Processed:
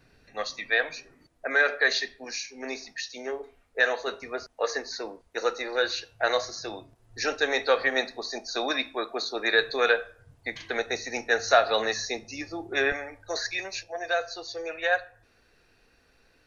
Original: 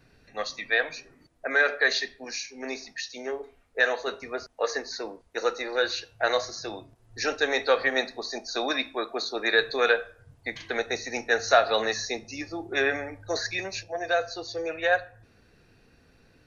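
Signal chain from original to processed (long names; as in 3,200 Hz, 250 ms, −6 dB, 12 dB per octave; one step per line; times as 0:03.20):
parametric band 140 Hz −2 dB 2.5 octaves, from 0:12.92 −12 dB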